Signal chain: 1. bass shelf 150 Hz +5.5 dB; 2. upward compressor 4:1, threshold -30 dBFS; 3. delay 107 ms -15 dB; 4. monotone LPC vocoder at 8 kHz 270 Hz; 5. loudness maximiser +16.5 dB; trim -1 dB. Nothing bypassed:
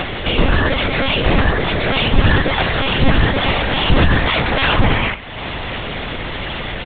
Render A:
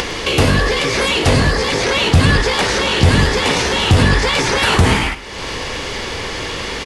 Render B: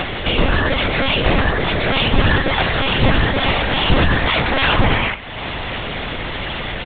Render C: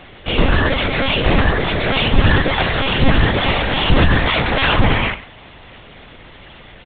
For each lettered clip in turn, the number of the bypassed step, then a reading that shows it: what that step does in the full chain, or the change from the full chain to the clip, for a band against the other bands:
4, 4 kHz band +1.5 dB; 1, 125 Hz band -2.0 dB; 2, momentary loudness spread change -6 LU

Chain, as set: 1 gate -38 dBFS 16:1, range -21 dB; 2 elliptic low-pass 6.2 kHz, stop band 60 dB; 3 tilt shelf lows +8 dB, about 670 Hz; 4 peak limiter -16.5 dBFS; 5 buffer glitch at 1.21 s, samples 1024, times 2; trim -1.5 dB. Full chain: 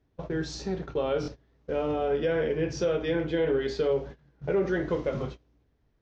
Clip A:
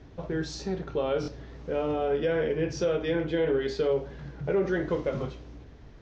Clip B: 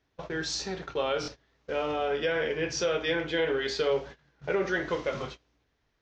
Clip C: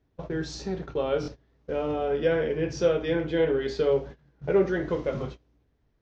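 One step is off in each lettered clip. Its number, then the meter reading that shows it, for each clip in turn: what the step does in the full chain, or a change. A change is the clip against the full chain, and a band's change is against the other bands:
1, momentary loudness spread change +3 LU; 3, 4 kHz band +9.5 dB; 4, crest factor change +4.5 dB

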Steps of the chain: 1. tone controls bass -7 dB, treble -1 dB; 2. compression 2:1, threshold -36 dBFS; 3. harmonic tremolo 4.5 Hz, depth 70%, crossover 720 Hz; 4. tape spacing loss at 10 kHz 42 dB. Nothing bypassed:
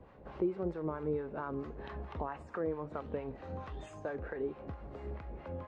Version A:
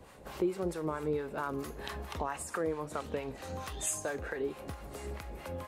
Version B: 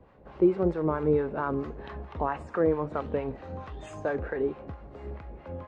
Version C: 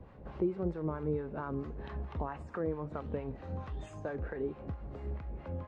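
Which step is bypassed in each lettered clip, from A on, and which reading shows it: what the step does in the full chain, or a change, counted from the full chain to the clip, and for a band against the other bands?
4, 4 kHz band +12.5 dB; 2, mean gain reduction 6.0 dB; 1, 125 Hz band +5.5 dB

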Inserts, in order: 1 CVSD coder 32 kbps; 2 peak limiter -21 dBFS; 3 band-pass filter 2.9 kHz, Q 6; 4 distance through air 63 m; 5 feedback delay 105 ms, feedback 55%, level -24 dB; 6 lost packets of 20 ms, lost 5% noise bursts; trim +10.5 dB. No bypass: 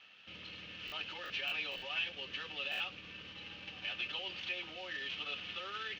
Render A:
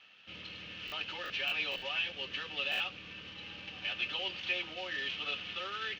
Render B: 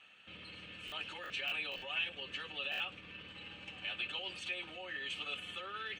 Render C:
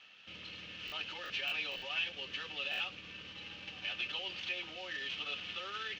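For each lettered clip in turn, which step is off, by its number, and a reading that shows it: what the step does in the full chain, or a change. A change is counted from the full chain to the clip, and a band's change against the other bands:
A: 2, mean gain reduction 3.0 dB; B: 1, 8 kHz band +3.0 dB; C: 4, 8 kHz band +3.5 dB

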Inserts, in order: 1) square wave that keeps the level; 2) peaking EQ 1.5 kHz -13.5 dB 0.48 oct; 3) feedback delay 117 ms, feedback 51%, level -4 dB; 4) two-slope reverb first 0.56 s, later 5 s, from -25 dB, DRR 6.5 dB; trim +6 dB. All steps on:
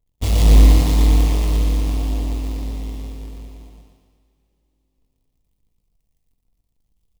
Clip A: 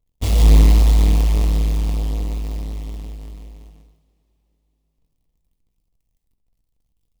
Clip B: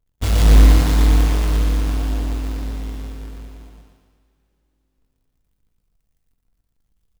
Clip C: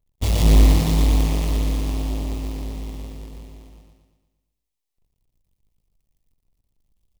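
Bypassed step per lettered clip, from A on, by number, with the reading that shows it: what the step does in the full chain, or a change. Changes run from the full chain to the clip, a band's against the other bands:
3, echo-to-direct -0.5 dB to -6.5 dB; 2, 2 kHz band +4.5 dB; 4, 125 Hz band -2.0 dB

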